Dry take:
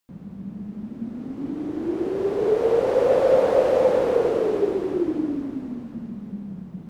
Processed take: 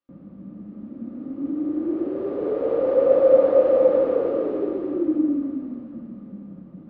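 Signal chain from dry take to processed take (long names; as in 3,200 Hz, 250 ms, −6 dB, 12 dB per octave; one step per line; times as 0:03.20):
Bessel low-pass filter 2,800 Hz, order 6
hollow resonant body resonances 300/540/1,200 Hz, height 14 dB, ringing for 45 ms
level −8.5 dB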